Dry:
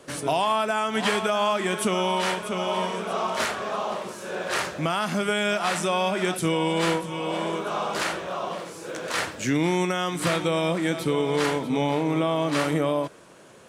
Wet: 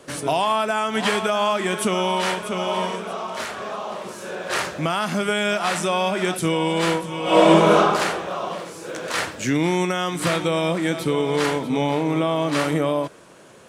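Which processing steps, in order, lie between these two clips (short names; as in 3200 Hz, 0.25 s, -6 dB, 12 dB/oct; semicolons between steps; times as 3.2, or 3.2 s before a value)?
2.95–4.5 compressor 3:1, threshold -30 dBFS, peak gain reduction 6.5 dB; 7.22–7.77 reverb throw, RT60 1.3 s, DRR -11 dB; gain +2.5 dB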